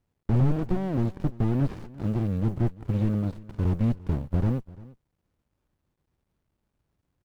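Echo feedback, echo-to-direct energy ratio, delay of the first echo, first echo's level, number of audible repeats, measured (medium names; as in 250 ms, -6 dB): no regular repeats, -20.5 dB, 344 ms, -20.5 dB, 1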